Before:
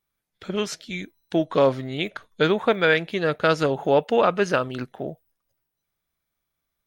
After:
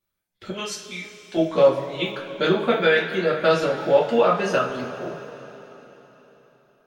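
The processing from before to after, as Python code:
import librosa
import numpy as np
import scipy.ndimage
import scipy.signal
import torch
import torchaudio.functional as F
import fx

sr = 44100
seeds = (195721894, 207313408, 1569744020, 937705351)

y = fx.dereverb_blind(x, sr, rt60_s=1.6)
y = fx.low_shelf(y, sr, hz=380.0, db=-11.5, at=(0.5, 1.37))
y = fx.rev_double_slope(y, sr, seeds[0], early_s=0.32, late_s=4.0, knee_db=-18, drr_db=-6.0)
y = y * librosa.db_to_amplitude(-5.5)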